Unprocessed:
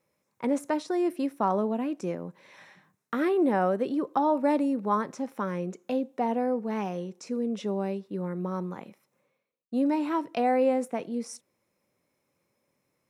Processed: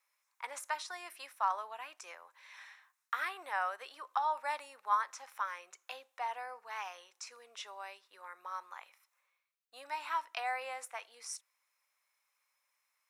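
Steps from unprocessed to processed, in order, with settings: HPF 1000 Hz 24 dB/oct

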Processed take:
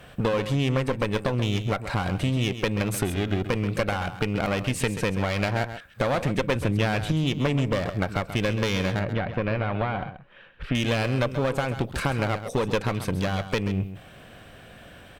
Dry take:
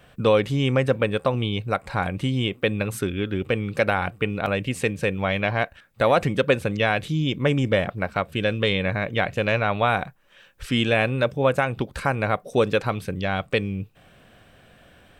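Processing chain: 6.55–7.12 low shelf 150 Hz +11 dB; compressor 4:1, threshold -25 dBFS, peak gain reduction 10 dB; one-sided clip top -33.5 dBFS; 8.99–10.75 air absorption 410 m; echo 0.133 s -11 dB; gain +5.5 dB

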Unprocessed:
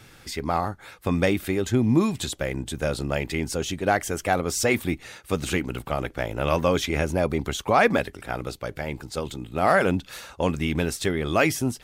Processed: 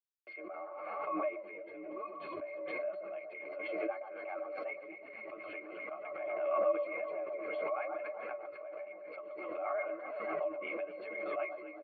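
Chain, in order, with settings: octaver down 1 oct, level -1 dB; gate with hold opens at -37 dBFS; comb 7.3 ms, depth 42%; echo with dull and thin repeats by turns 0.124 s, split 1300 Hz, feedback 69%, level -6.5 dB; crossover distortion -44.5 dBFS; flange 0.99 Hz, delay 4.7 ms, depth 8.5 ms, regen +18%; rotary speaker horn 0.8 Hz, later 8 Hz, at 2.1; octave resonator C, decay 0.1 s; mistuned SSB +52 Hz 530–2800 Hz; frequency-shifting echo 0.144 s, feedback 56%, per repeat -52 Hz, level -23 dB; backwards sustainer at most 26 dB/s; gain +1 dB

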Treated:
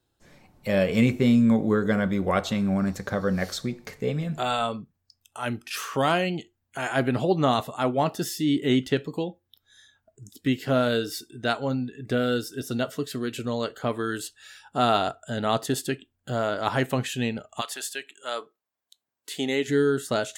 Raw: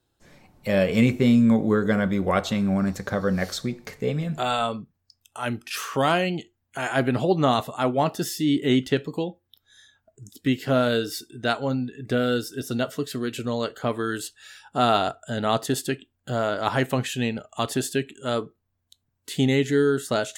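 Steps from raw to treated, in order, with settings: 17.6–19.67 HPF 1100 Hz -> 300 Hz 12 dB/oct; gain -1.5 dB

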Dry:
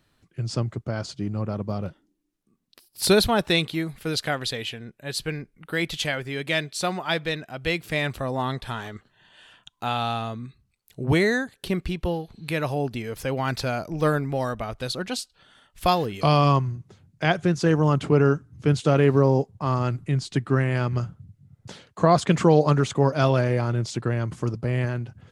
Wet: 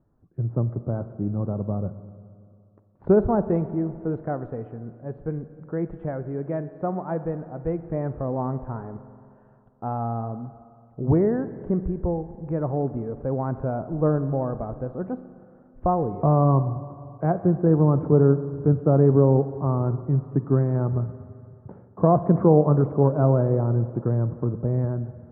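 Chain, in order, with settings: Bessel low-pass 700 Hz, order 6; spring tank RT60 2.5 s, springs 43/59 ms, chirp 70 ms, DRR 12.5 dB; gain +2 dB

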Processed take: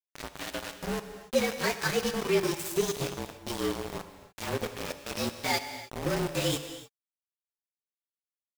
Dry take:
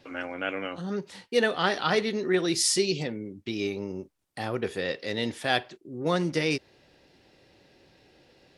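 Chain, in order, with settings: inharmonic rescaling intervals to 113%; in parallel at +1 dB: compressor 8:1, threshold -38 dBFS, peak gain reduction 17 dB; on the sum: rotary speaker horn 7 Hz, later 0.9 Hz, at 1.61; sample gate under -28.5 dBFS; non-linear reverb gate 0.32 s flat, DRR 9 dB

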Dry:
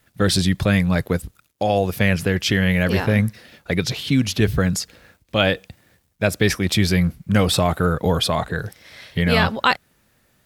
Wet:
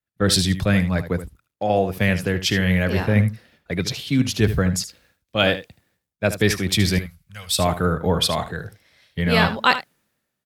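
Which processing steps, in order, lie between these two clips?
6.98–7.59 passive tone stack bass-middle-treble 10-0-10; echo 76 ms -11.5 dB; three-band expander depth 70%; gain -1.5 dB

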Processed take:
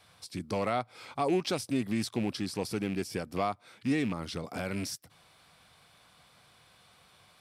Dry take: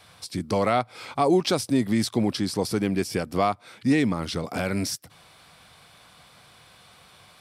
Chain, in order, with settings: rattling part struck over -27 dBFS, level -25 dBFS; gain -8 dB

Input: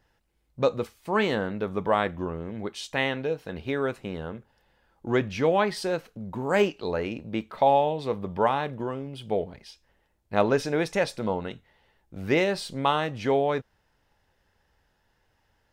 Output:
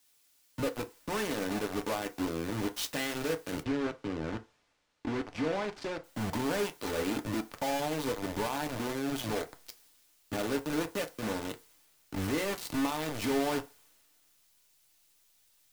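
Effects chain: bell 260 Hz +7 dB 0.65 oct; compressor 5:1, threshold -36 dBFS, peak gain reduction 18.5 dB; companded quantiser 2-bit; resonator 390 Hz, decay 0.22 s, harmonics all, mix 40%; backlash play -52.5 dBFS; requantised 10-bit, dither triangular; 3.63–6.04 air absorption 110 m; FDN reverb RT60 0.3 s, low-frequency decay 0.75×, high-frequency decay 0.6×, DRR 6 dB; three-band expander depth 40%

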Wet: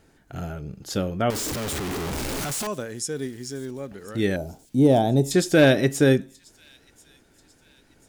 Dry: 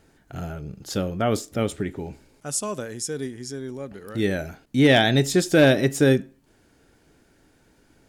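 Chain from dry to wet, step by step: 1.3–2.67 infinite clipping; 4.36–5.31 EQ curve 900 Hz 0 dB, 1800 Hz -24 dB, 10000 Hz -1 dB; thin delay 1.038 s, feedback 44%, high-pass 3000 Hz, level -22 dB

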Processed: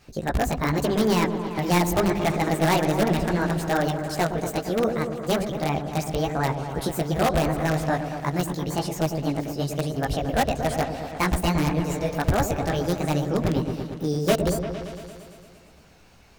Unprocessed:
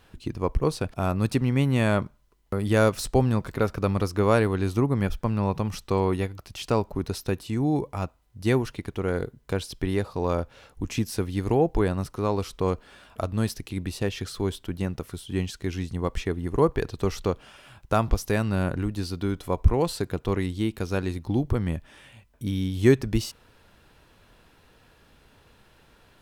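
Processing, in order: chorus voices 2, 0.83 Hz, delay 25 ms, depth 4.6 ms; wow and flutter 42 cents; in parallel at -4 dB: wrapped overs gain 18 dB; on the sum: repeats that get brighter 0.183 s, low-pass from 400 Hz, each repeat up 1 oct, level -6 dB; wide varispeed 1.6×

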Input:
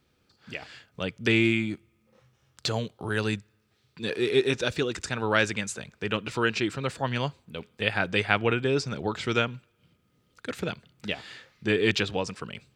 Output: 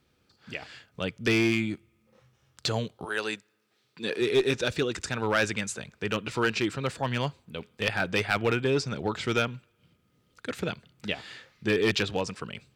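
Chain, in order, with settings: 3.04–4.2 HPF 520 Hz -> 160 Hz 12 dB/oct; one-sided clip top -17 dBFS

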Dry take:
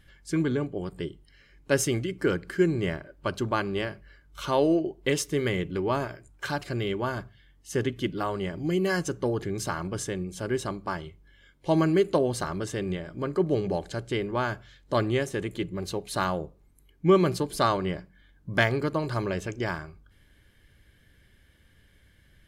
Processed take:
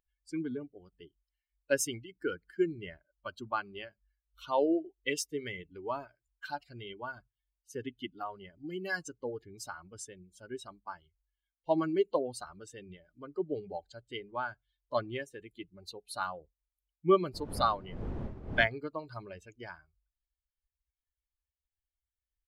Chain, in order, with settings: per-bin expansion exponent 2; 17.33–18.66 wind noise 110 Hz -29 dBFS; tone controls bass -13 dB, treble -2 dB

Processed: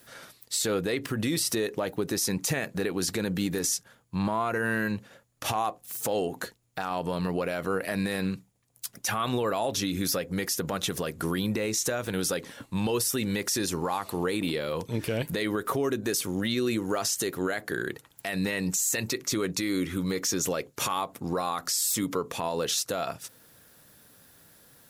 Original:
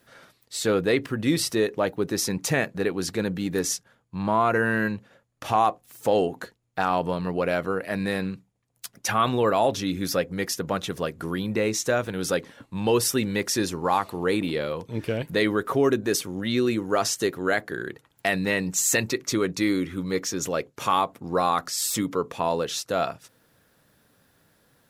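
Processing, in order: compressor, threshold -25 dBFS, peak gain reduction 9.5 dB; high shelf 4900 Hz +10.5 dB; limiter -20.5 dBFS, peak gain reduction 11.5 dB; gain +2.5 dB

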